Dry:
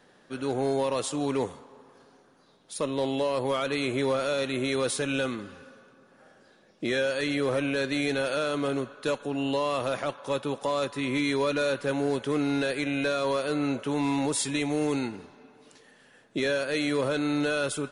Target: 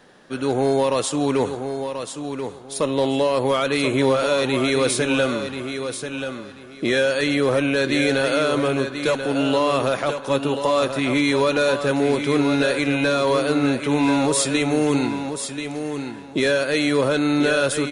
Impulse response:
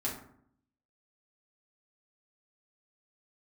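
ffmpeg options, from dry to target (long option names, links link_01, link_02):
-af "aecho=1:1:1035|2070|3105:0.398|0.0876|0.0193,volume=7.5dB"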